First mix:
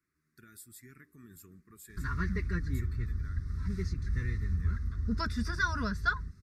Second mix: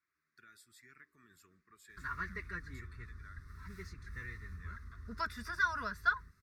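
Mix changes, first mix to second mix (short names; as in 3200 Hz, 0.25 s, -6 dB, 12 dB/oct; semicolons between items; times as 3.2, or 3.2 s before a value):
background: remove synth low-pass 5100 Hz, resonance Q 1.6; master: add three-band isolator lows -16 dB, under 560 Hz, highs -18 dB, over 5700 Hz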